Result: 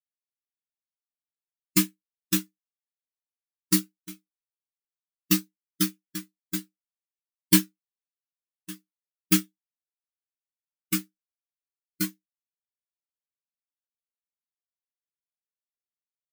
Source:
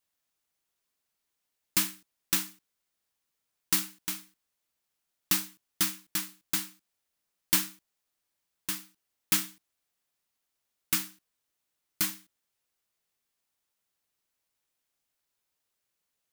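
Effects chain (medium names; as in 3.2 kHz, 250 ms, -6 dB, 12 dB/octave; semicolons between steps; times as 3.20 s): spectral contrast expander 2.5:1; trim +6 dB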